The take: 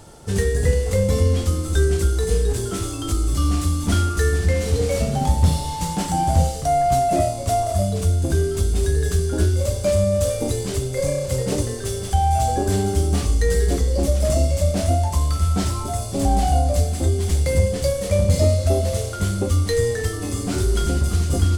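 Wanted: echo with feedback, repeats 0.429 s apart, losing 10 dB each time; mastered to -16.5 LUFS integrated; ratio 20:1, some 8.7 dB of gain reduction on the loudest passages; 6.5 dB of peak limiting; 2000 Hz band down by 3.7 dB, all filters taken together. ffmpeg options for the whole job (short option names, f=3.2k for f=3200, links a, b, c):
-af "equalizer=f=2k:t=o:g=-4.5,acompressor=threshold=-20dB:ratio=20,alimiter=limit=-18.5dB:level=0:latency=1,aecho=1:1:429|858|1287|1716:0.316|0.101|0.0324|0.0104,volume=10.5dB"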